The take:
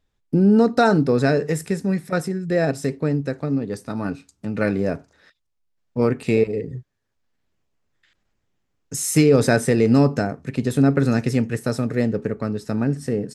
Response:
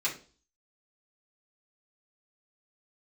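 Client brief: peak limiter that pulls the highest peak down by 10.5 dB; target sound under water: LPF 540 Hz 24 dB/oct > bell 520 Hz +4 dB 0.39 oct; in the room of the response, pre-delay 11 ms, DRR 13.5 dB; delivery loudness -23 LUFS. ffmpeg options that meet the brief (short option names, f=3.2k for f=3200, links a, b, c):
-filter_complex "[0:a]alimiter=limit=-14.5dB:level=0:latency=1,asplit=2[a][b];[1:a]atrim=start_sample=2205,adelay=11[c];[b][c]afir=irnorm=-1:irlink=0,volume=-20.5dB[d];[a][d]amix=inputs=2:normalize=0,lowpass=f=540:w=0.5412,lowpass=f=540:w=1.3066,equalizer=f=520:t=o:w=0.39:g=4,volume=2.5dB"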